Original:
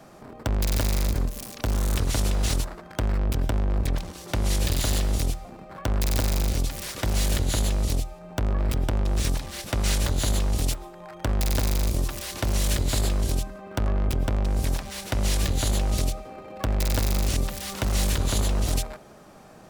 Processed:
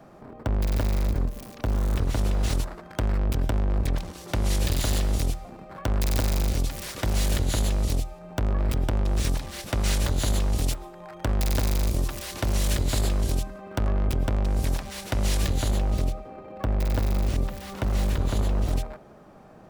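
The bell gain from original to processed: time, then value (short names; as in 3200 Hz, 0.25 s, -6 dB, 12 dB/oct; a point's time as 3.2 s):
bell 9300 Hz 3 oct
2.14 s -11.5 dB
2.78 s -2.5 dB
15.48 s -2.5 dB
15.94 s -13 dB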